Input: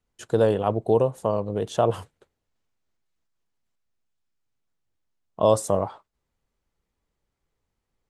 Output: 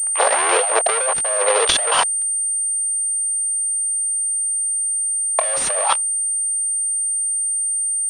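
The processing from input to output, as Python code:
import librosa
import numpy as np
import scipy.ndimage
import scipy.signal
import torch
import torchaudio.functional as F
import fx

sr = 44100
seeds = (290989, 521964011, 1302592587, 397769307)

p1 = fx.tape_start_head(x, sr, length_s=0.61)
p2 = fx.level_steps(p1, sr, step_db=22)
p3 = p1 + F.gain(torch.from_numpy(p2), 3.0).numpy()
p4 = fx.leveller(p3, sr, passes=5)
p5 = scipy.signal.sosfilt(scipy.signal.butter(6, 550.0, 'highpass', fs=sr, output='sos'), p4)
p6 = fx.over_compress(p5, sr, threshold_db=-20.0, ratio=-1.0)
p7 = fx.high_shelf(p6, sr, hz=2500.0, db=10.5)
p8 = fx.pwm(p7, sr, carrier_hz=8800.0)
y = F.gain(torch.from_numpy(p8), -2.5).numpy()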